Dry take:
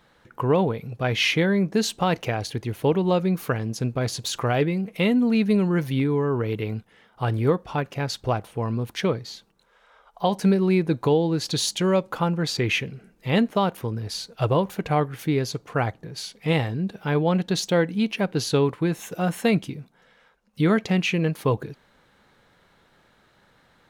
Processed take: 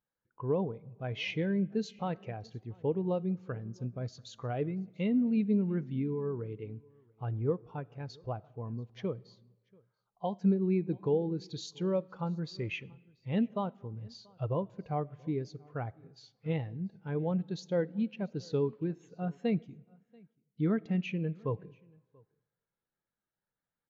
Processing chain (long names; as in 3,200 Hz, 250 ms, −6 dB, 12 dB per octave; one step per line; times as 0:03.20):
pitch vibrato 7 Hz 23 cents
comb and all-pass reverb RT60 1.8 s, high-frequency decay 0.65×, pre-delay 25 ms, DRR 16 dB
downsampling to 16,000 Hz
on a send: single-tap delay 685 ms −19 dB
on the sum: every bin expanded away from the loudest bin 1.5 to 1
level −8.5 dB